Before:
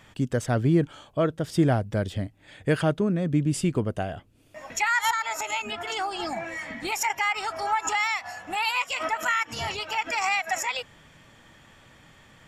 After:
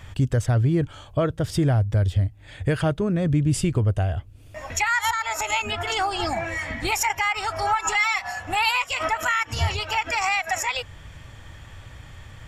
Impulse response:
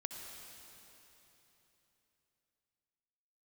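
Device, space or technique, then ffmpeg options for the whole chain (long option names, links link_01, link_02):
car stereo with a boomy subwoofer: -filter_complex "[0:a]asettb=1/sr,asplit=3[link_01][link_02][link_03];[link_01]atrim=end=7.734[link_04];[link_02]atrim=start=7.73:end=8.4,asetpts=PTS-STARTPTS,afade=type=in:duration=0.004:curve=qsin,afade=type=out:start_time=0.666:duration=0.004:curve=qsin,aecho=1:1:5.3:0.71,atrim=end_sample=29547[link_05];[link_03]atrim=start=8.396[link_06];[link_04][link_05]acrossfade=duration=0.004:curve1=hsin:curve2=qsin[link_07];[link_07][link_06]acrossfade=duration=0.004:curve1=qsin:curve2=hsin,lowshelf=frequency=130:width_type=q:width=1.5:gain=12.5,alimiter=limit=-18dB:level=0:latency=1:release=443,volume=5.5dB"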